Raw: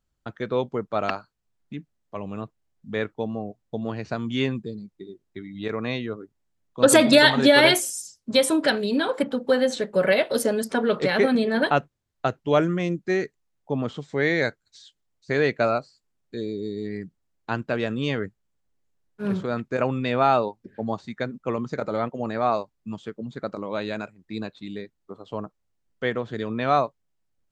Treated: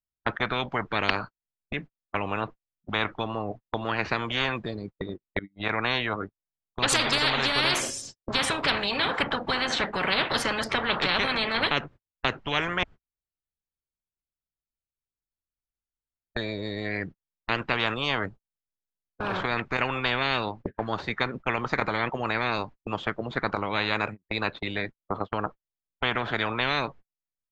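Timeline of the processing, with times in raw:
5.39–5.86 fade in, from -22.5 dB
12.83–16.36 room tone
17.94–19.34 bell 1900 Hz -13 dB
whole clip: gate -41 dBFS, range -43 dB; LPF 2000 Hz 12 dB/oct; spectral compressor 10:1

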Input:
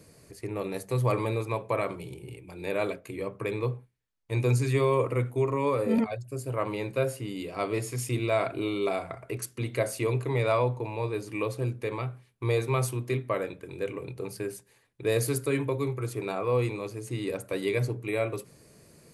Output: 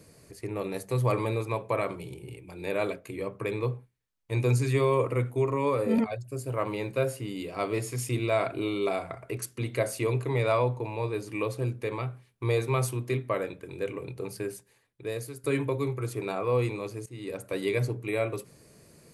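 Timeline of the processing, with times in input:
6.25–7.98 short-mantissa float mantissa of 6-bit
14.48–15.44 fade out, to -18.5 dB
17.06–17.71 fade in equal-power, from -16 dB

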